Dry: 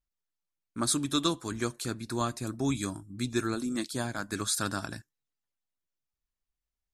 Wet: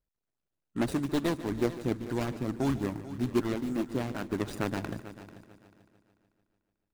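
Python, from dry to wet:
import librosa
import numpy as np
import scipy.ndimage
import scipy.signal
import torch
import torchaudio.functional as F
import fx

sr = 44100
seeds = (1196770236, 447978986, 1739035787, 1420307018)

y = scipy.signal.medfilt(x, 41)
y = fx.hpss(y, sr, part='percussive', gain_db=8)
y = fx.echo_heads(y, sr, ms=147, heads='first and third', feedback_pct=43, wet_db=-15.5)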